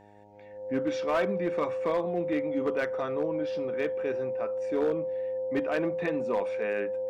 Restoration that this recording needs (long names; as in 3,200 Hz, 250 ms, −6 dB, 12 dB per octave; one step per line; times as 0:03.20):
clipped peaks rebuilt −21 dBFS
hum removal 103 Hz, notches 9
notch filter 520 Hz, Q 30